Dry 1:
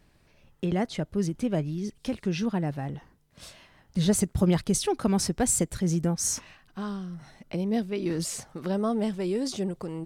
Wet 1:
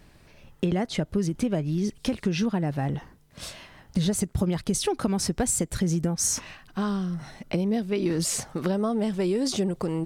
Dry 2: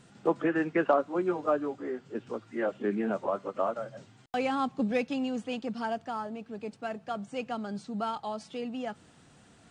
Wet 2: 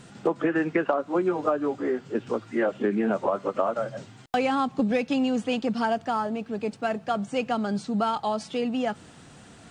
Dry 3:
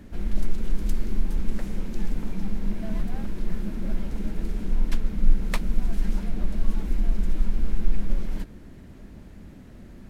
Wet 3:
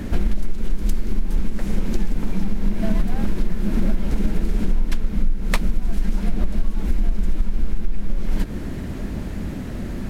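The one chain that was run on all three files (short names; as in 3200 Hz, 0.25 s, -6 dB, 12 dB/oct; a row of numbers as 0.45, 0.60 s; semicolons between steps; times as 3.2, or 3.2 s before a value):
compressor 12:1, threshold -29 dBFS; match loudness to -27 LUFS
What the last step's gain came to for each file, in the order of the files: +8.0, +9.0, +16.5 dB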